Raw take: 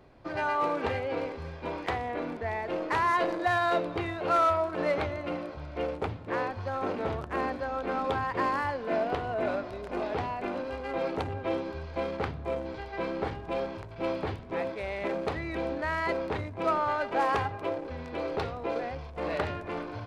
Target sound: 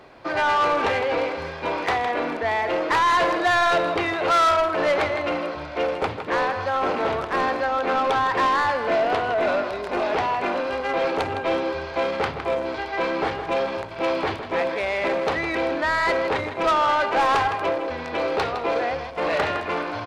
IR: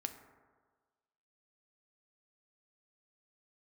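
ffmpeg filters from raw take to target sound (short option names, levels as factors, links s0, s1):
-filter_complex "[0:a]aecho=1:1:160:0.266,asplit=2[s0][s1];[s1]highpass=f=720:p=1,volume=7.08,asoftclip=type=tanh:threshold=0.178[s2];[s0][s2]amix=inputs=2:normalize=0,lowpass=f=6900:p=1,volume=0.501,volume=1.33"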